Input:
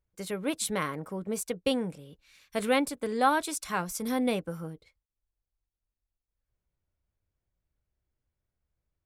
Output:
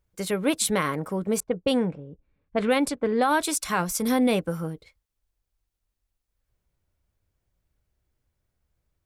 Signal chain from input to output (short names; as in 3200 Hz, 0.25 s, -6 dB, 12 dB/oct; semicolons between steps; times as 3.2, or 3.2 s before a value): 1.4–3.34 low-pass opened by the level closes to 300 Hz, open at -22 dBFS; limiter -20.5 dBFS, peak gain reduction 9.5 dB; gain +7.5 dB